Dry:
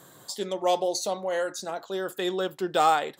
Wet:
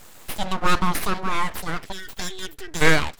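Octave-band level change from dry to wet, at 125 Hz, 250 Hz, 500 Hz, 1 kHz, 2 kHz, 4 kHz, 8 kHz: +15.0, +5.0, -3.5, 0.0, +11.5, +4.5, +3.0 dB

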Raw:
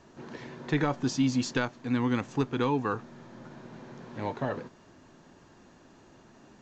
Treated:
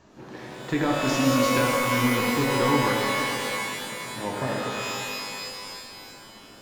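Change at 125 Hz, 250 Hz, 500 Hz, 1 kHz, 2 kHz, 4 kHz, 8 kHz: +3.5 dB, +4.0 dB, +8.0 dB, +9.5 dB, +11.0 dB, +12.5 dB, n/a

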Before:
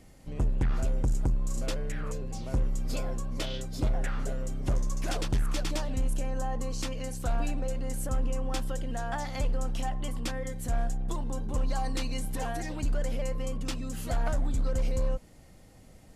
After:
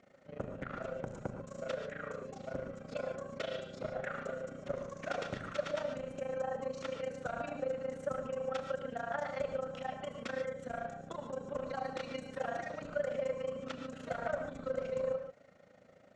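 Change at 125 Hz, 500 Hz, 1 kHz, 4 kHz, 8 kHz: -16.0, +2.0, -3.0, -9.5, -17.0 dB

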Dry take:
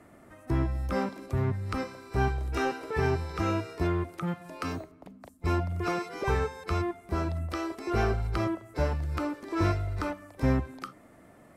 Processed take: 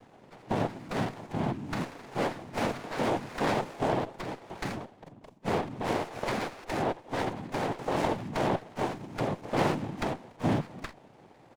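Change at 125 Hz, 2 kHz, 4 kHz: -6.0, -0.5, +3.5 dB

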